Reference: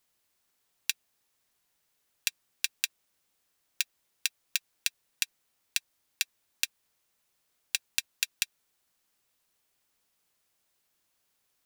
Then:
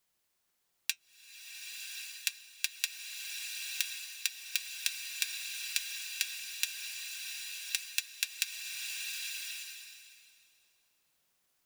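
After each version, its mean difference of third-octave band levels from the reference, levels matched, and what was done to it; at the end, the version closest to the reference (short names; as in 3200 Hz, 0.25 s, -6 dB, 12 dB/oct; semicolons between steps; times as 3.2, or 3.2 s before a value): 2.0 dB: flange 0.26 Hz, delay 5.2 ms, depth 1.6 ms, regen -70%; bloom reverb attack 1.12 s, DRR 1 dB; gain +1.5 dB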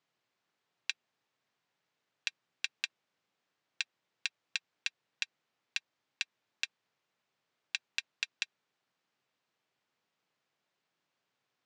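6.5 dB: elliptic band-pass 120–8400 Hz; air absorption 160 m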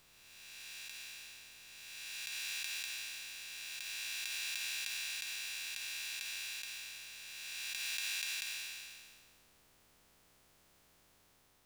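10.5 dB: time blur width 0.848 s; tilt -2 dB/oct; gain +14 dB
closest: first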